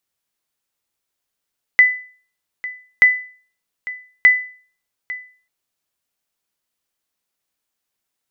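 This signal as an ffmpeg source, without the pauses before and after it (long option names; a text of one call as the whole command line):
ffmpeg -f lavfi -i "aevalsrc='0.708*(sin(2*PI*2000*mod(t,1.23))*exp(-6.91*mod(t,1.23)/0.43)+0.133*sin(2*PI*2000*max(mod(t,1.23)-0.85,0))*exp(-6.91*max(mod(t,1.23)-0.85,0)/0.43))':duration=3.69:sample_rate=44100" out.wav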